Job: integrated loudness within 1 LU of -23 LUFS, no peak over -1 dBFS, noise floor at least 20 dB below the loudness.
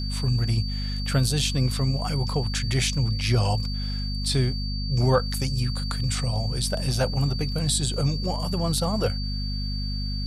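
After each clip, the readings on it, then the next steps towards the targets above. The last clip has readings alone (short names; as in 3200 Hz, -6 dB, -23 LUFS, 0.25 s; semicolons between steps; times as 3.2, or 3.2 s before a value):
hum 50 Hz; harmonics up to 250 Hz; hum level -26 dBFS; steady tone 4600 Hz; tone level -34 dBFS; loudness -25.5 LUFS; peak -8.5 dBFS; loudness target -23.0 LUFS
-> notches 50/100/150/200/250 Hz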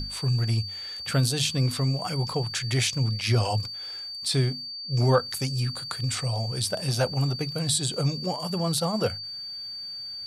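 hum none; steady tone 4600 Hz; tone level -34 dBFS
-> notch 4600 Hz, Q 30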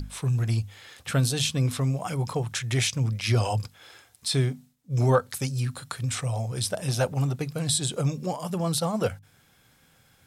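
steady tone none; loudness -27.0 LUFS; peak -9.0 dBFS; loudness target -23.0 LUFS
-> gain +4 dB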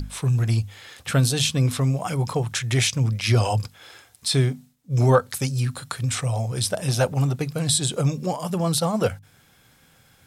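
loudness -23.0 LUFS; peak -5.0 dBFS; noise floor -57 dBFS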